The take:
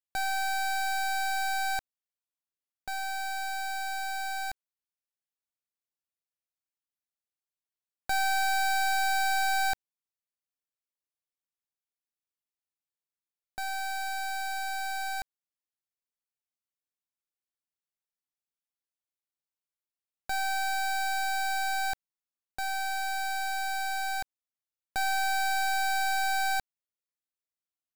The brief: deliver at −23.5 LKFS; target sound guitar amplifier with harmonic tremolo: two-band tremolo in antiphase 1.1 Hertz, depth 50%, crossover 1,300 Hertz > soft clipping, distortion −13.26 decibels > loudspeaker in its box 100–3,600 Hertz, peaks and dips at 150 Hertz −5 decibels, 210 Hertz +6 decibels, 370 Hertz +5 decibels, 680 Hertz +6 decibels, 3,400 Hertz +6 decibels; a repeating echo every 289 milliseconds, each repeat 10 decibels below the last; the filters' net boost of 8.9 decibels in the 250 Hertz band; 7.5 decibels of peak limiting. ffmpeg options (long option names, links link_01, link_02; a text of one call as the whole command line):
ffmpeg -i in.wav -filter_complex "[0:a]equalizer=frequency=250:width_type=o:gain=8,alimiter=level_in=6dB:limit=-24dB:level=0:latency=1,volume=-6dB,aecho=1:1:289|578|867|1156:0.316|0.101|0.0324|0.0104,acrossover=split=1300[link_01][link_02];[link_01]aeval=exprs='val(0)*(1-0.5/2+0.5/2*cos(2*PI*1.1*n/s))':channel_layout=same[link_03];[link_02]aeval=exprs='val(0)*(1-0.5/2-0.5/2*cos(2*PI*1.1*n/s))':channel_layout=same[link_04];[link_03][link_04]amix=inputs=2:normalize=0,asoftclip=threshold=-36.5dB,highpass=100,equalizer=frequency=150:width_type=q:width=4:gain=-5,equalizer=frequency=210:width_type=q:width=4:gain=6,equalizer=frequency=370:width_type=q:width=4:gain=5,equalizer=frequency=680:width_type=q:width=4:gain=6,equalizer=frequency=3400:width_type=q:width=4:gain=6,lowpass=frequency=3600:width=0.5412,lowpass=frequency=3600:width=1.3066,volume=16.5dB" out.wav